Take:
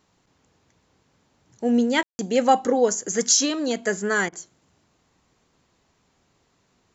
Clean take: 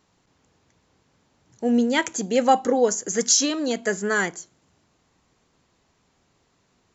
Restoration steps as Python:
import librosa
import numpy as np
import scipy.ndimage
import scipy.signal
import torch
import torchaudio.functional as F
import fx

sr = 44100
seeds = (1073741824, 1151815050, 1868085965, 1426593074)

y = fx.fix_ambience(x, sr, seeds[0], print_start_s=5.66, print_end_s=6.16, start_s=2.03, end_s=2.19)
y = fx.fix_interpolate(y, sr, at_s=(4.29,), length_ms=33.0)